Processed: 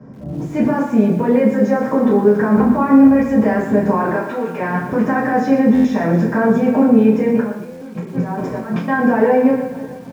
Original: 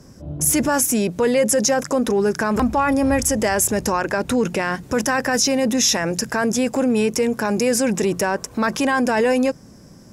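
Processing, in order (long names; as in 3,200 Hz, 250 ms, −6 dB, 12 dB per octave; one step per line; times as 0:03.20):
repeating echo 307 ms, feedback 45%, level −20 dB
brickwall limiter −15 dBFS, peak gain reduction 8.5 dB
0:04.15–0:04.59: high-pass filter 910 Hz 6 dB per octave
0:07.28–0:08.88: compressor whose output falls as the input rises −31 dBFS, ratio −0.5
low-pass filter 1,200 Hz 12 dB per octave
convolution reverb RT60 0.50 s, pre-delay 3 ms, DRR −10.5 dB
buffer that repeats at 0:05.74/0:07.71, samples 512, times 8
feedback echo at a low word length 117 ms, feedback 35%, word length 6 bits, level −10 dB
level −4 dB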